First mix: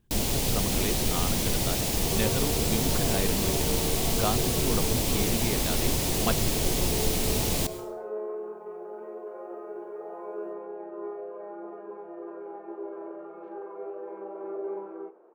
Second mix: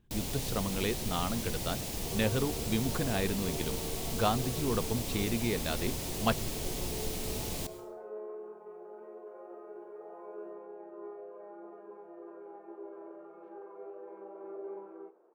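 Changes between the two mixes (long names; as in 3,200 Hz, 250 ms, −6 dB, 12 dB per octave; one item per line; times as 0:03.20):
first sound −10.0 dB
second sound −8.0 dB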